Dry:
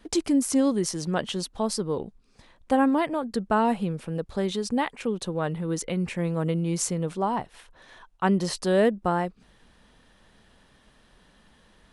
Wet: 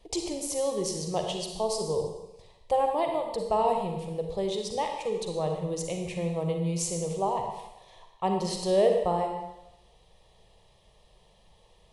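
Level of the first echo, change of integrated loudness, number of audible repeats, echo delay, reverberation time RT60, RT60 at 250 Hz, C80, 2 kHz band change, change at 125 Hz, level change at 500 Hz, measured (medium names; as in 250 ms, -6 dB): no echo, -3.0 dB, no echo, no echo, 0.90 s, 0.85 s, 6.0 dB, -10.5 dB, -4.5 dB, +0.5 dB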